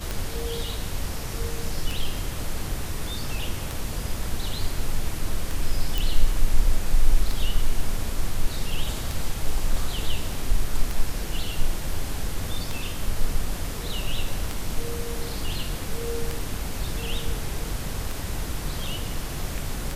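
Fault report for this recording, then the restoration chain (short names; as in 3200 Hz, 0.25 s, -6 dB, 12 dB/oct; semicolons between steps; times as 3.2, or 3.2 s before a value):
tick 33 1/3 rpm
5.98 pop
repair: de-click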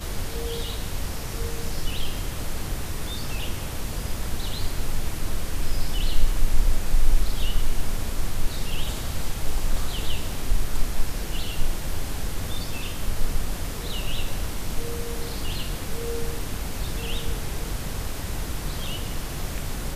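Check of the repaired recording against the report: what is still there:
none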